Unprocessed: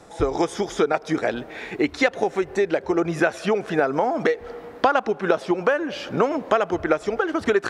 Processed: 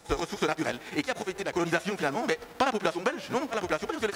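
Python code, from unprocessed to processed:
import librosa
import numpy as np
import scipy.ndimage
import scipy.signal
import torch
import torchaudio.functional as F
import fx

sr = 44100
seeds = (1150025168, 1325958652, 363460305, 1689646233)

y = fx.envelope_flatten(x, sr, power=0.6)
y = fx.stretch_grains(y, sr, factor=0.54, grain_ms=125.0)
y = y * 10.0 ** (-6.5 / 20.0)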